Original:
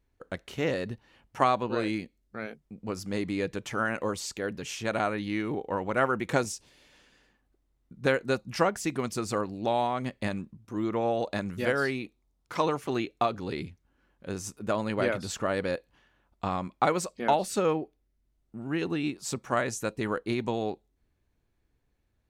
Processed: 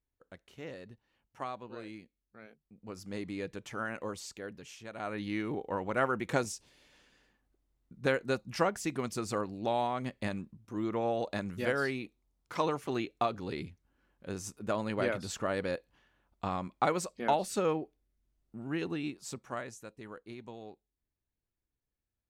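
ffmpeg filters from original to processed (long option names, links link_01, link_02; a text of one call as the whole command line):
ffmpeg -i in.wav -af "volume=4.5dB,afade=type=in:start_time=2.61:duration=0.5:silence=0.421697,afade=type=out:start_time=4.19:duration=0.76:silence=0.375837,afade=type=in:start_time=4.95:duration=0.27:silence=0.237137,afade=type=out:start_time=18.68:duration=1.18:silence=0.237137" out.wav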